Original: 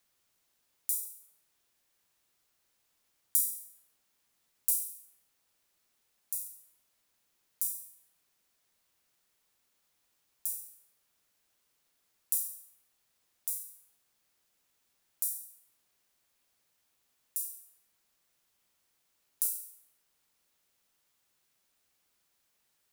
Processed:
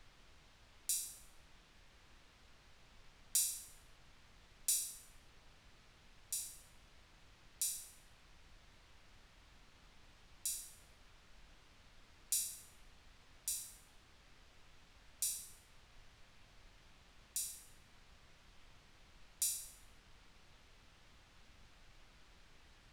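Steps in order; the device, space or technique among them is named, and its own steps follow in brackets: aircraft cabin announcement (band-pass 490–3800 Hz; saturation -37.5 dBFS, distortion -18 dB; brown noise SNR 14 dB); trim +15.5 dB

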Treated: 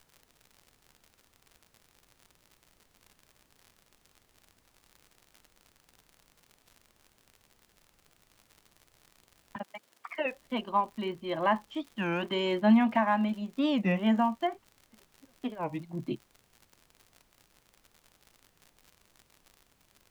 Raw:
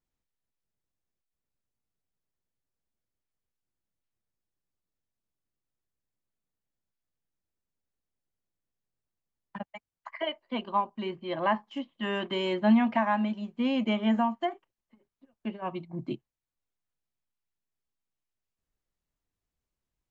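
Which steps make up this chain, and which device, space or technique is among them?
warped LP (warped record 33 1/3 rpm, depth 250 cents; crackle 76 per s -42 dBFS; pink noise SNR 34 dB); 9.56–10.26 s: high-pass 220 Hz 12 dB/octave

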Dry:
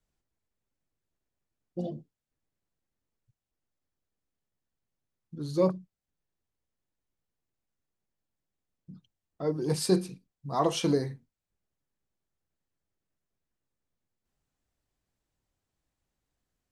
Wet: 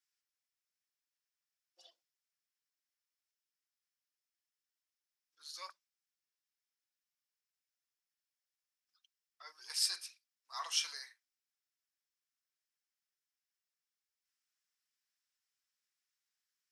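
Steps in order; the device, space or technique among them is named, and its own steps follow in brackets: headphones lying on a table (high-pass 1.4 kHz 24 dB/octave; peaking EQ 5.3 kHz +8.5 dB 0.25 oct); trim -2 dB

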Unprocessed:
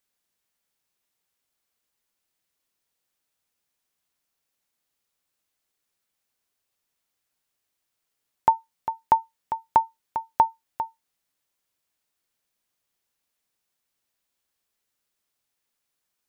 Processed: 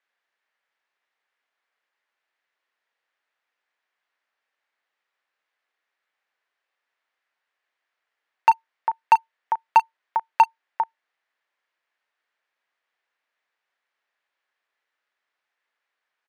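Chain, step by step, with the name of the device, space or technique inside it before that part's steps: megaphone (band-pass 590–2500 Hz; peaking EQ 1.8 kHz +6 dB 0.56 oct; hard clipper -13.5 dBFS, distortion -13 dB; doubling 36 ms -12 dB); trim +5.5 dB

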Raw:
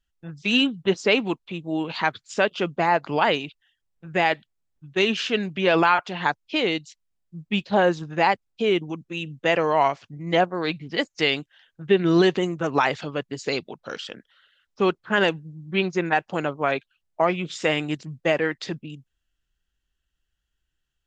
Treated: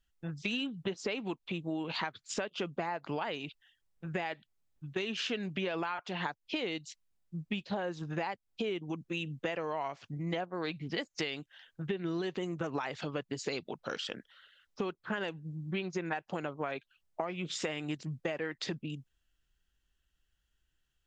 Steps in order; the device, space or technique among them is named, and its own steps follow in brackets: serial compression, peaks first (compression, threshold -26 dBFS, peak gain reduction 12.5 dB; compression 2:1, threshold -36 dBFS, peak gain reduction 7.5 dB)

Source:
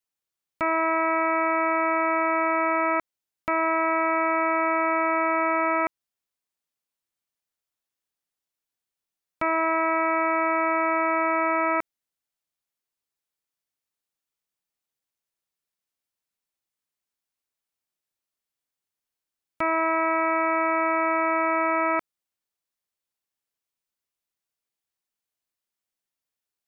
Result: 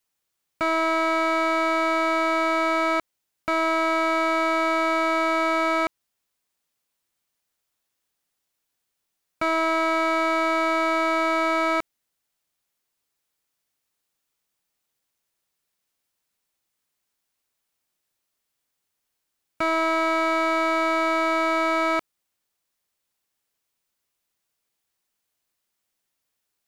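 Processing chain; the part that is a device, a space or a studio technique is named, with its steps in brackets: saturation between pre-emphasis and de-emphasis (treble shelf 2.1 kHz +11 dB; saturation -24 dBFS, distortion -5 dB; treble shelf 2.1 kHz -11 dB); trim +8.5 dB

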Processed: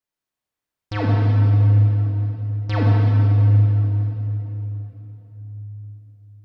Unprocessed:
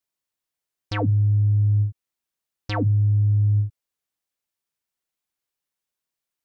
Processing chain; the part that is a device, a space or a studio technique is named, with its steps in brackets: swimming-pool hall (reverberation RT60 3.8 s, pre-delay 25 ms, DRR -3.5 dB; treble shelf 3.4 kHz -8 dB)

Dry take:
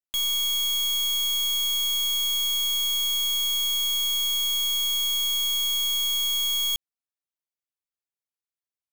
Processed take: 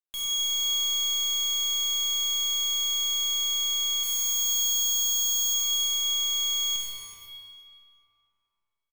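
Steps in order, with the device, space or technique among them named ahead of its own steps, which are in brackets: 4.03–5.54 s: FFT filter 180 Hz 0 dB, 730 Hz -12 dB, 1.2 kHz -5 dB, 2.3 kHz -10 dB, 4.3 kHz +3 dB, 12 kHz +7 dB; cave (delay 378 ms -14.5 dB; reverberation RT60 2.9 s, pre-delay 26 ms, DRR -4 dB); trim -8 dB

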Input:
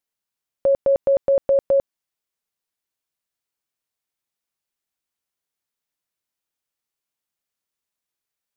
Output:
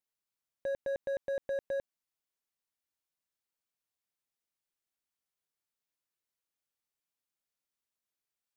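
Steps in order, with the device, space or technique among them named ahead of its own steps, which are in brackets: clipper into limiter (hard clipper -16.5 dBFS, distortion -15 dB; peak limiter -24.5 dBFS, peak gain reduction 8 dB); trim -6.5 dB

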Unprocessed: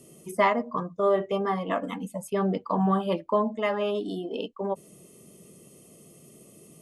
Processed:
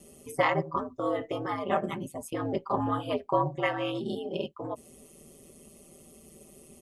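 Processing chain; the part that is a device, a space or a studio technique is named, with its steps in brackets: ring-modulated robot voice (ring modulator 79 Hz; comb 5.1 ms, depth 92%)

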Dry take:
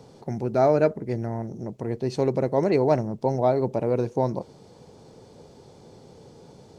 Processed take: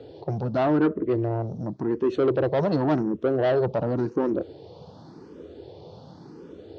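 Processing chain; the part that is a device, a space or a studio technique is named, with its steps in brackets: barber-pole phaser into a guitar amplifier (barber-pole phaser +0.9 Hz; saturation -25.5 dBFS, distortion -9 dB; cabinet simulation 75–4300 Hz, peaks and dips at 78 Hz +5 dB, 130 Hz -3 dB, 220 Hz -4 dB, 320 Hz +7 dB, 840 Hz -3 dB, 2.2 kHz -9 dB); 0.63–1.03 s: treble shelf 4.3 kHz -9 dB; trim +7.5 dB

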